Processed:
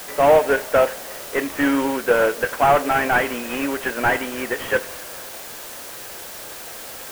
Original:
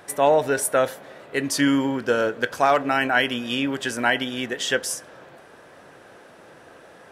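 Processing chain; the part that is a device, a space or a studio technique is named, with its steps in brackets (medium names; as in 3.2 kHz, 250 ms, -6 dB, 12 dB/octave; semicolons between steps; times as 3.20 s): army field radio (band-pass 360–2800 Hz; CVSD coder 16 kbps; white noise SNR 15 dB); trim +6.5 dB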